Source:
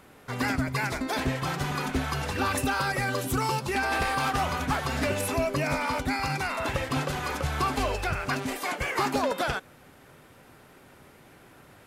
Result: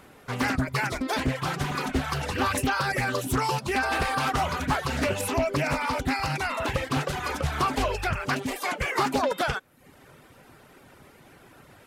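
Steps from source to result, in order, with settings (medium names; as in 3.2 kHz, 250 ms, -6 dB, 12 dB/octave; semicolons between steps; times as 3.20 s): reverb removal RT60 0.61 s; loudspeaker Doppler distortion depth 0.42 ms; trim +2.5 dB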